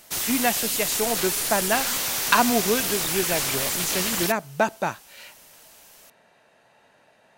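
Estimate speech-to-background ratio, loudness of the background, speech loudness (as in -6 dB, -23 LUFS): -2.5 dB, -23.5 LUFS, -26.0 LUFS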